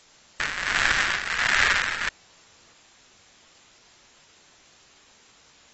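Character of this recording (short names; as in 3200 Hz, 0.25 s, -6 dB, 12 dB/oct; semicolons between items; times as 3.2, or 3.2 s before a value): tremolo triangle 1.4 Hz, depth 75%; a quantiser's noise floor 10-bit, dither triangular; AAC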